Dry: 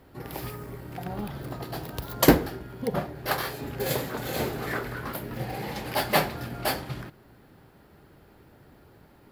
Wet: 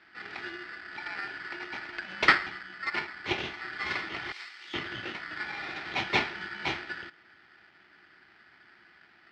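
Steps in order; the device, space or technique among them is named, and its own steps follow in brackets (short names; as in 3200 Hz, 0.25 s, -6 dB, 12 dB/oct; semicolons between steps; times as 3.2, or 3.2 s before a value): ring modulator pedal into a guitar cabinet (polarity switched at an audio rate 1600 Hz; speaker cabinet 76–3900 Hz, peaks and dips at 350 Hz +10 dB, 520 Hz -6 dB, 1100 Hz -8 dB); 4.32–4.74 differentiator; gain -2 dB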